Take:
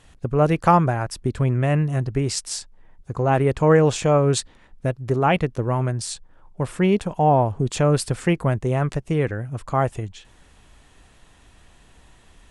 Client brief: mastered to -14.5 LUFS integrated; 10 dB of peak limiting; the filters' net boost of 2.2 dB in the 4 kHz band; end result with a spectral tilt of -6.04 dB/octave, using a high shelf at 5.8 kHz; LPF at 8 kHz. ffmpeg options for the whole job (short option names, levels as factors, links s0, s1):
-af "lowpass=8000,equalizer=f=4000:t=o:g=5,highshelf=f=5800:g=-4.5,volume=3.16,alimiter=limit=0.668:level=0:latency=1"